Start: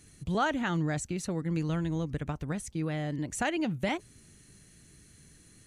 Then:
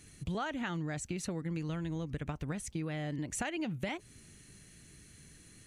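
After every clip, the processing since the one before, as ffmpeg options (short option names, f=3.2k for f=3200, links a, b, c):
-af "equalizer=f=2.5k:t=o:w=1:g=3.5,acompressor=threshold=-33dB:ratio=6"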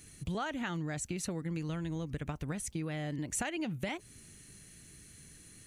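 -af "highshelf=f=9.7k:g=9"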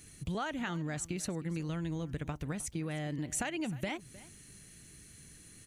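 -af "aecho=1:1:310:0.112"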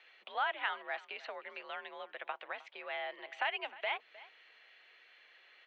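-af "highpass=f=600:t=q:w=0.5412,highpass=f=600:t=q:w=1.307,lowpass=f=3.4k:t=q:w=0.5176,lowpass=f=3.4k:t=q:w=0.7071,lowpass=f=3.4k:t=q:w=1.932,afreqshift=56,volume=4.5dB"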